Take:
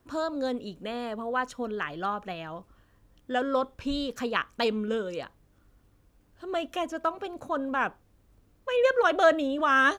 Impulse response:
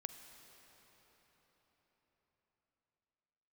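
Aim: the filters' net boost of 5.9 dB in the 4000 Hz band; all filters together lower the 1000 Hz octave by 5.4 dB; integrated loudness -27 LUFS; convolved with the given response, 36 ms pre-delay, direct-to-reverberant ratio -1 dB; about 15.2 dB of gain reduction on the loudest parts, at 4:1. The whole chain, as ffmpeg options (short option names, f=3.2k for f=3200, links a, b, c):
-filter_complex "[0:a]equalizer=f=1k:t=o:g=-8.5,equalizer=f=4k:t=o:g=8.5,acompressor=threshold=-38dB:ratio=4,asplit=2[a][b];[1:a]atrim=start_sample=2205,adelay=36[c];[b][c]afir=irnorm=-1:irlink=0,volume=4dB[d];[a][d]amix=inputs=2:normalize=0,volume=10.5dB"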